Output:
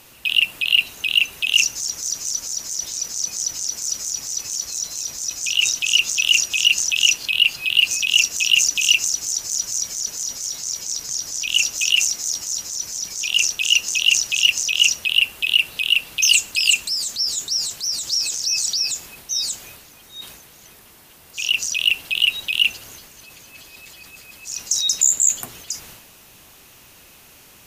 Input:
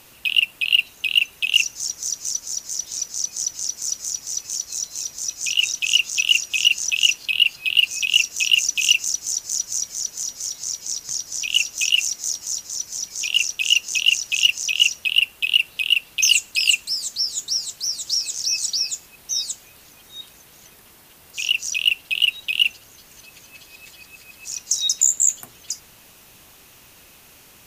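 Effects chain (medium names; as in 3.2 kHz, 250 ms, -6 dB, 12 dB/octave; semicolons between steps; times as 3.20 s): transient shaper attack -1 dB, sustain +7 dB; trim +1 dB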